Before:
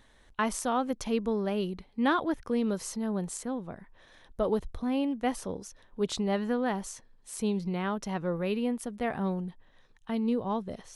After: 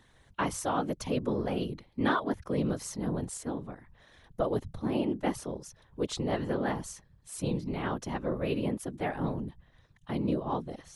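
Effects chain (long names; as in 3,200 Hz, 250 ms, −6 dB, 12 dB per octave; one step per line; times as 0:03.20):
random phases in short frames
level −1.5 dB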